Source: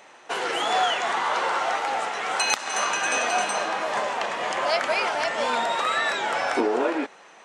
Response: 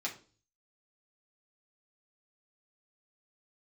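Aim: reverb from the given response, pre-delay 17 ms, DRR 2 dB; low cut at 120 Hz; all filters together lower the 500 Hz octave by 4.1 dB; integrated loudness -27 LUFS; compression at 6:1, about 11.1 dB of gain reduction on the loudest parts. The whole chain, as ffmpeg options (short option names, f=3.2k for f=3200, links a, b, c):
-filter_complex "[0:a]highpass=120,equalizer=f=500:t=o:g=-5.5,acompressor=threshold=-32dB:ratio=6,asplit=2[a][b];[1:a]atrim=start_sample=2205,adelay=17[c];[b][c]afir=irnorm=-1:irlink=0,volume=-4.5dB[d];[a][d]amix=inputs=2:normalize=0,volume=5dB"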